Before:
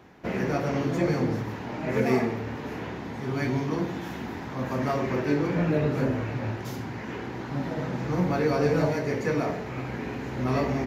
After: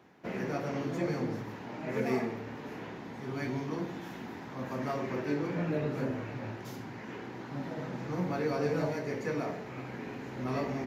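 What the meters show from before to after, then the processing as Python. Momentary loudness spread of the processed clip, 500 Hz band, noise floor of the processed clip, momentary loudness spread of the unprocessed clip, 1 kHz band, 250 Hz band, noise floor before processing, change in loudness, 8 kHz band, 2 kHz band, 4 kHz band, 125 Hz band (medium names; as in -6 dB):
11 LU, -7.0 dB, -44 dBFS, 10 LU, -7.0 dB, -7.5 dB, -37 dBFS, -7.5 dB, -7.0 dB, -7.0 dB, -7.0 dB, -9.0 dB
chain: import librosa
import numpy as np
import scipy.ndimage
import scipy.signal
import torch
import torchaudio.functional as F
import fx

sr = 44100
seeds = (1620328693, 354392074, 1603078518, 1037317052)

y = scipy.signal.sosfilt(scipy.signal.butter(2, 120.0, 'highpass', fs=sr, output='sos'), x)
y = y * 10.0 ** (-7.0 / 20.0)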